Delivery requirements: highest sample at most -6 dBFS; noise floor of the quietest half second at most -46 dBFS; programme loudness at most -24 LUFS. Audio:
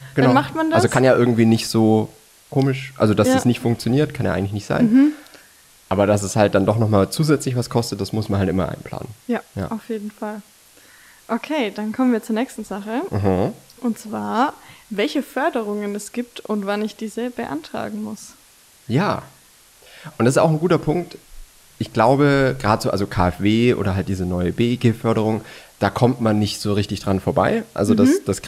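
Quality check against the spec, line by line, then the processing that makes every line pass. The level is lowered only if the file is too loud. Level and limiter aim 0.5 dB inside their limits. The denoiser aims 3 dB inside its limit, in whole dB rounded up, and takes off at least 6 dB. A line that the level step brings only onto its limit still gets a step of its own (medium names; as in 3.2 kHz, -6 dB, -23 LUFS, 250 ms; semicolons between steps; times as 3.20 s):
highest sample -3.0 dBFS: fail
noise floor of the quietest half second -51 dBFS: pass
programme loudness -19.5 LUFS: fail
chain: trim -5 dB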